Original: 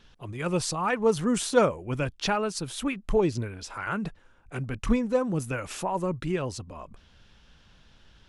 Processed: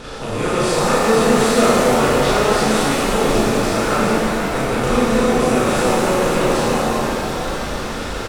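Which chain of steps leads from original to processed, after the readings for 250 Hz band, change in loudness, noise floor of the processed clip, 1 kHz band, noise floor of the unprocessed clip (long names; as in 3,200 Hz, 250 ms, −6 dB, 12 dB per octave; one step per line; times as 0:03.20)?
+11.5 dB, +11.5 dB, −25 dBFS, +14.0 dB, −59 dBFS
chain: compressor on every frequency bin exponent 0.4
double-tracking delay 36 ms −2 dB
reverb with rising layers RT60 3.9 s, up +7 semitones, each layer −8 dB, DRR −8 dB
level −5.5 dB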